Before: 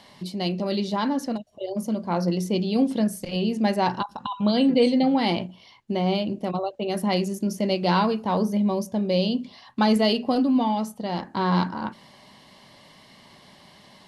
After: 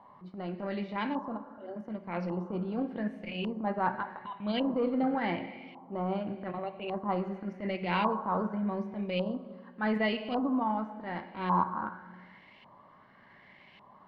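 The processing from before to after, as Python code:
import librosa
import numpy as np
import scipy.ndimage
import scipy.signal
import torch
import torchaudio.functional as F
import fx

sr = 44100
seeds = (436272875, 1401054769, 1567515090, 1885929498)

y = fx.transient(x, sr, attack_db=-11, sustain_db=-7)
y = fx.rev_plate(y, sr, seeds[0], rt60_s=1.8, hf_ratio=0.75, predelay_ms=0, drr_db=9.5)
y = fx.filter_lfo_lowpass(y, sr, shape='saw_up', hz=0.87, low_hz=980.0, high_hz=2600.0, q=4.4)
y = F.gain(torch.from_numpy(y), -8.5).numpy()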